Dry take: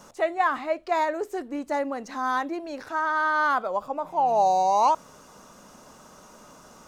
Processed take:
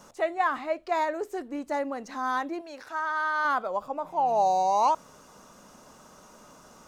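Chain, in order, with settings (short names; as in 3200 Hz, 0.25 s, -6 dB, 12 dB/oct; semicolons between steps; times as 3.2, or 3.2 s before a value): 2.61–3.45 low shelf 460 Hz -11 dB; gain -2.5 dB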